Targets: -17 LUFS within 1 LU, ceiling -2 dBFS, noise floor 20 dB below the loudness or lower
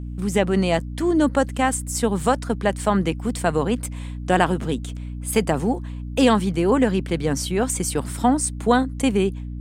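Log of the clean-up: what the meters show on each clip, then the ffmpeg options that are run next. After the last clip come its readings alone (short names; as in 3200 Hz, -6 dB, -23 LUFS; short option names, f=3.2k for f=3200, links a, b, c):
hum 60 Hz; harmonics up to 300 Hz; hum level -29 dBFS; loudness -22.0 LUFS; peak -1.5 dBFS; loudness target -17.0 LUFS
-> -af "bandreject=f=60:t=h:w=4,bandreject=f=120:t=h:w=4,bandreject=f=180:t=h:w=4,bandreject=f=240:t=h:w=4,bandreject=f=300:t=h:w=4"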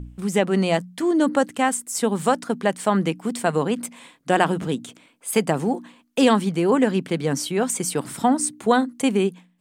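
hum none; loudness -22.0 LUFS; peak -2.5 dBFS; loudness target -17.0 LUFS
-> -af "volume=5dB,alimiter=limit=-2dB:level=0:latency=1"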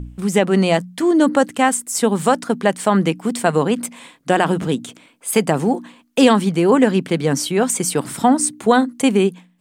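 loudness -17.5 LUFS; peak -2.0 dBFS; noise floor -53 dBFS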